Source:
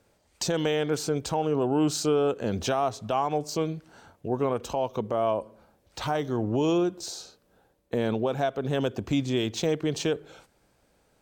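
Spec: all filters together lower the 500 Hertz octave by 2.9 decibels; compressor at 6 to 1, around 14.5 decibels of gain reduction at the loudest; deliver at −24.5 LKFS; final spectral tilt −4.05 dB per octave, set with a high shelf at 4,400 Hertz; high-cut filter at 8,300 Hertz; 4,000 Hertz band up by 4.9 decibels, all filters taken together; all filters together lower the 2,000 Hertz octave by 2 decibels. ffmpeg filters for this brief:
ffmpeg -i in.wav -af "lowpass=8300,equalizer=frequency=500:width_type=o:gain=-3.5,equalizer=frequency=2000:width_type=o:gain=-5.5,equalizer=frequency=4000:width_type=o:gain=3.5,highshelf=frequency=4400:gain=8.5,acompressor=threshold=-38dB:ratio=6,volume=16.5dB" out.wav

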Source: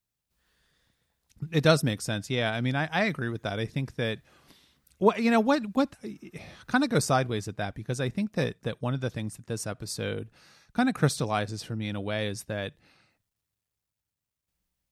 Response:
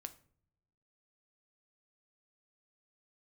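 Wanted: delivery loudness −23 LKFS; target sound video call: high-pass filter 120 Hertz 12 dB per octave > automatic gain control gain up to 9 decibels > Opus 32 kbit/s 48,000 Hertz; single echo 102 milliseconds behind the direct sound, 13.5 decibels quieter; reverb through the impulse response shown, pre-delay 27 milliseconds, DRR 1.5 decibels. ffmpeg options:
-filter_complex "[0:a]aecho=1:1:102:0.211,asplit=2[link_01][link_02];[1:a]atrim=start_sample=2205,adelay=27[link_03];[link_02][link_03]afir=irnorm=-1:irlink=0,volume=3dB[link_04];[link_01][link_04]amix=inputs=2:normalize=0,highpass=120,dynaudnorm=maxgain=9dB,volume=3.5dB" -ar 48000 -c:a libopus -b:a 32k

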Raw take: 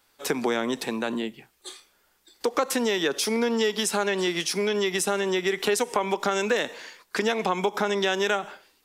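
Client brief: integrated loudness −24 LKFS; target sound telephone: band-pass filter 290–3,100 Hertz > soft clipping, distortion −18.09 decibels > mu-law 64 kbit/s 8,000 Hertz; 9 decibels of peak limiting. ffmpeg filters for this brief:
ffmpeg -i in.wav -af "alimiter=limit=-18dB:level=0:latency=1,highpass=290,lowpass=3100,asoftclip=threshold=-23dB,volume=8dB" -ar 8000 -c:a pcm_mulaw out.wav

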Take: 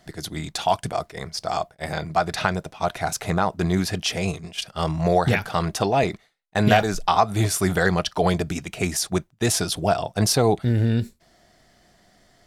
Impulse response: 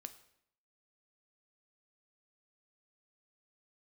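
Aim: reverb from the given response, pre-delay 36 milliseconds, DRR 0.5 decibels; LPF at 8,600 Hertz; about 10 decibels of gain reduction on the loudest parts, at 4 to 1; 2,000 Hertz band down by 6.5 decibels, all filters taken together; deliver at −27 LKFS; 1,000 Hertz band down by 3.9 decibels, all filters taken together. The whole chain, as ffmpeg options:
-filter_complex "[0:a]lowpass=8600,equalizer=frequency=1000:width_type=o:gain=-4.5,equalizer=frequency=2000:width_type=o:gain=-7,acompressor=threshold=-25dB:ratio=4,asplit=2[link_01][link_02];[1:a]atrim=start_sample=2205,adelay=36[link_03];[link_02][link_03]afir=irnorm=-1:irlink=0,volume=4.5dB[link_04];[link_01][link_04]amix=inputs=2:normalize=0,volume=0.5dB"

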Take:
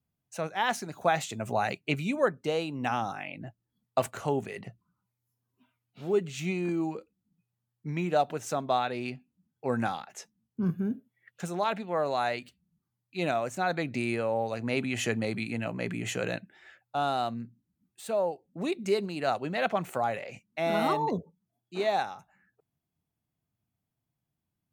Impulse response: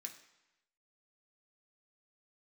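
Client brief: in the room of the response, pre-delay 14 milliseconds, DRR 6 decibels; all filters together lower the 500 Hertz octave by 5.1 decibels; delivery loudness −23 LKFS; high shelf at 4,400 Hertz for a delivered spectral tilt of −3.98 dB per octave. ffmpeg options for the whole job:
-filter_complex "[0:a]equalizer=frequency=500:width_type=o:gain=-7,highshelf=frequency=4400:gain=6.5,asplit=2[link_01][link_02];[1:a]atrim=start_sample=2205,adelay=14[link_03];[link_02][link_03]afir=irnorm=-1:irlink=0,volume=-1dB[link_04];[link_01][link_04]amix=inputs=2:normalize=0,volume=9dB"

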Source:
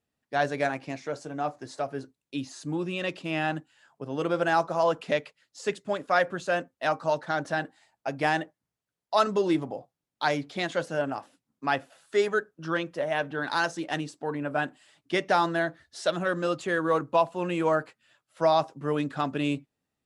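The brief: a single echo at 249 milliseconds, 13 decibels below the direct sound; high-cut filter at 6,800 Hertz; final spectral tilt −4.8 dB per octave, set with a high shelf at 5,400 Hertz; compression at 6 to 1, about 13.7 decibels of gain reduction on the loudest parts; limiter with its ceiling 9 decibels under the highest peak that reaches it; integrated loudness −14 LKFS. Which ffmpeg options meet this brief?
ffmpeg -i in.wav -af "lowpass=6800,highshelf=frequency=5400:gain=5.5,acompressor=threshold=-33dB:ratio=6,alimiter=level_in=4dB:limit=-24dB:level=0:latency=1,volume=-4dB,aecho=1:1:249:0.224,volume=26dB" out.wav

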